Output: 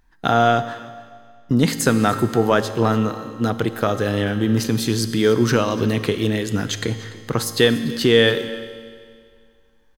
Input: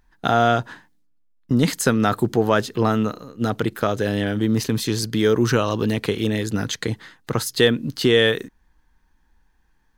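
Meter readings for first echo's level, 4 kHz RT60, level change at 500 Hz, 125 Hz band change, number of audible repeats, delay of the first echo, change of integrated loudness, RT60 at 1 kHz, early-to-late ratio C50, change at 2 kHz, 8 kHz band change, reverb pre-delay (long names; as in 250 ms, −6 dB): −18.5 dB, 2.0 s, +1.5 dB, +1.5 dB, 1, 291 ms, +1.5 dB, 2.0 s, 10.0 dB, +1.5 dB, +1.5 dB, 4 ms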